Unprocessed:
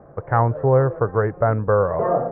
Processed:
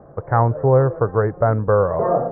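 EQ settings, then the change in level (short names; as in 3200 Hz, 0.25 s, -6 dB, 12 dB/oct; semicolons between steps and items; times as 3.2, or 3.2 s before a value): LPF 1800 Hz 12 dB/oct; air absorption 130 m; +2.0 dB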